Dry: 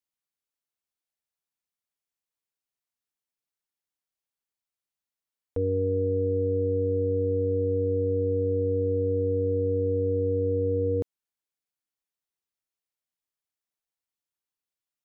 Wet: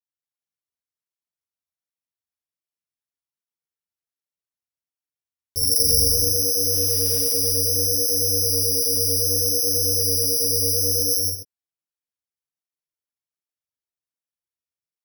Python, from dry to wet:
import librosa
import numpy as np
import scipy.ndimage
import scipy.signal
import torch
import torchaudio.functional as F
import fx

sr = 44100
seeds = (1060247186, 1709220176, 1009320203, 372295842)

y = fx.octave_divider(x, sr, octaves=2, level_db=4.0, at=(5.57, 6.02))
y = fx.bass_treble(y, sr, bass_db=4, treble_db=-7)
y = fx.quant_dither(y, sr, seeds[0], bits=6, dither='triangular', at=(6.71, 7.19), fade=0.02)
y = fx.air_absorb(y, sr, metres=130.0)
y = fx.rev_gated(y, sr, seeds[1], gate_ms=430, shape='flat', drr_db=-4.5)
y = (np.kron(y[::8], np.eye(8)[0]) * 8)[:len(y)]
y = fx.flanger_cancel(y, sr, hz=1.3, depth_ms=7.3)
y = F.gain(torch.from_numpy(y), -9.0).numpy()